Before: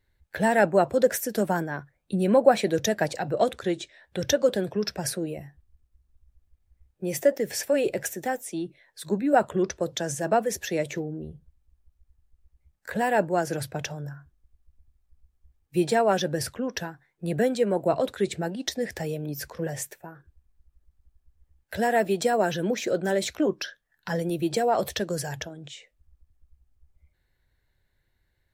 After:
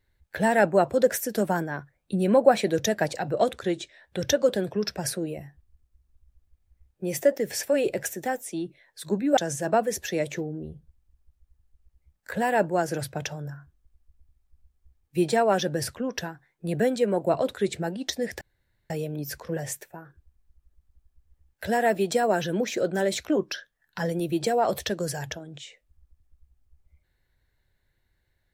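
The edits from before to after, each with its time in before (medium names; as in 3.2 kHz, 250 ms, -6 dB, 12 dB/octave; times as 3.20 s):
9.37–9.96 s: delete
19.00 s: insert room tone 0.49 s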